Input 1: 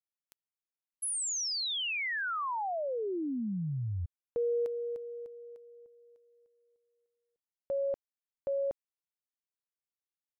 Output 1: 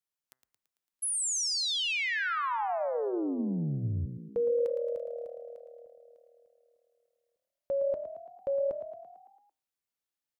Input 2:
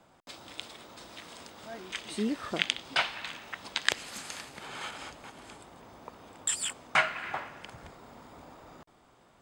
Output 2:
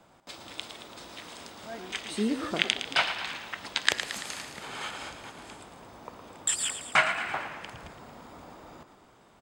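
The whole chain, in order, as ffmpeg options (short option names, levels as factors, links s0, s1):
-filter_complex "[0:a]bandreject=f=128.6:t=h:w=4,bandreject=f=257.2:t=h:w=4,bandreject=f=385.8:t=h:w=4,bandreject=f=514.4:t=h:w=4,bandreject=f=643:t=h:w=4,bandreject=f=771.6:t=h:w=4,bandreject=f=900.2:t=h:w=4,bandreject=f=1028.8:t=h:w=4,bandreject=f=1157.4:t=h:w=4,bandreject=f=1286:t=h:w=4,bandreject=f=1414.6:t=h:w=4,bandreject=f=1543.2:t=h:w=4,bandreject=f=1671.8:t=h:w=4,bandreject=f=1800.4:t=h:w=4,bandreject=f=1929:t=h:w=4,bandreject=f=2057.6:t=h:w=4,asplit=2[s0][s1];[s1]asplit=7[s2][s3][s4][s5][s6][s7][s8];[s2]adelay=112,afreqshift=38,volume=0.316[s9];[s3]adelay=224,afreqshift=76,volume=0.184[s10];[s4]adelay=336,afreqshift=114,volume=0.106[s11];[s5]adelay=448,afreqshift=152,volume=0.0617[s12];[s6]adelay=560,afreqshift=190,volume=0.0359[s13];[s7]adelay=672,afreqshift=228,volume=0.0207[s14];[s8]adelay=784,afreqshift=266,volume=0.012[s15];[s9][s10][s11][s12][s13][s14][s15]amix=inputs=7:normalize=0[s16];[s0][s16]amix=inputs=2:normalize=0,volume=1.33"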